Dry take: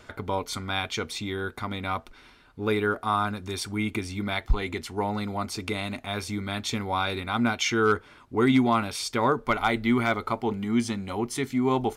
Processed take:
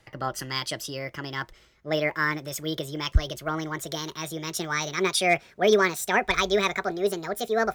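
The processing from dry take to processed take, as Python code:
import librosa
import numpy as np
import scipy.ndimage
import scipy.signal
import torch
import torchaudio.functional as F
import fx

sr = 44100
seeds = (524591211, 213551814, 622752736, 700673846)

y = fx.speed_glide(x, sr, from_pct=135, to_pct=174)
y = fx.band_widen(y, sr, depth_pct=40)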